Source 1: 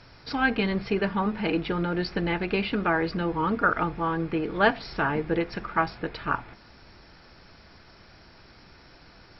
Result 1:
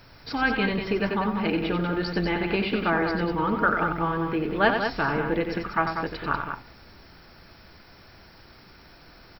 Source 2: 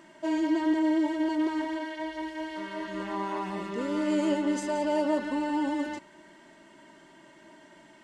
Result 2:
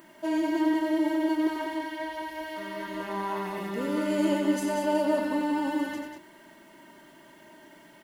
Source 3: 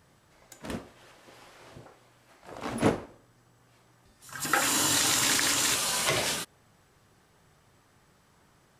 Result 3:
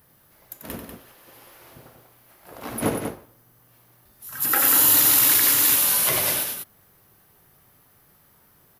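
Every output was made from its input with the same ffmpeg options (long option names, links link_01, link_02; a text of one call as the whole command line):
ffmpeg -i in.wav -af "aecho=1:1:90.38|192.4:0.447|0.447,aexciter=amount=15.4:drive=2.7:freq=11000" out.wav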